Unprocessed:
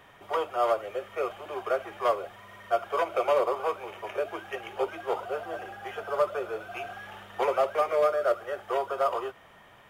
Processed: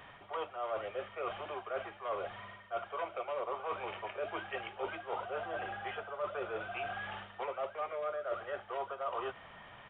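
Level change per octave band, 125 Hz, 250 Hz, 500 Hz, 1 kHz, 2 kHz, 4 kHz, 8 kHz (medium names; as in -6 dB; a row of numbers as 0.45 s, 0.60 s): -3.0 dB, -8.5 dB, -11.0 dB, -9.0 dB, -4.5 dB, -5.5 dB, no reading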